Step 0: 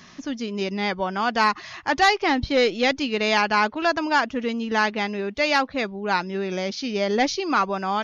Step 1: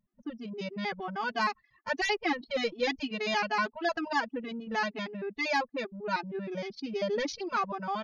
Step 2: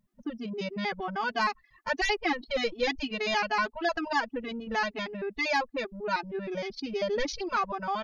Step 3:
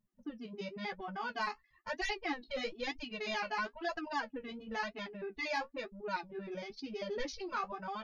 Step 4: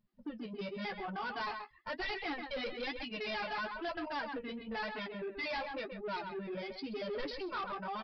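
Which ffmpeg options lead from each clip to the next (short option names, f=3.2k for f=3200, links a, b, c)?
-af "anlmdn=63.1,afftfilt=real='re*gt(sin(2*PI*6.4*pts/sr)*(1-2*mod(floor(b*sr/1024/220),2)),0)':imag='im*gt(sin(2*PI*6.4*pts/sr)*(1-2*mod(floor(b*sr/1024/220),2)),0)':win_size=1024:overlap=0.75,volume=-5.5dB"
-filter_complex "[0:a]asubboost=boost=9.5:cutoff=53,asplit=2[a][b];[b]acompressor=threshold=-39dB:ratio=6,volume=-1dB[c];[a][c]amix=inputs=2:normalize=0"
-af "flanger=delay=8.3:depth=8.7:regen=-34:speed=1:shape=triangular,volume=-5dB"
-filter_complex "[0:a]asplit=2[a][b];[b]adelay=130,highpass=300,lowpass=3.4k,asoftclip=type=hard:threshold=-32.5dB,volume=-9dB[c];[a][c]amix=inputs=2:normalize=0,aresample=11025,asoftclip=type=tanh:threshold=-37.5dB,aresample=44100,volume=3.5dB"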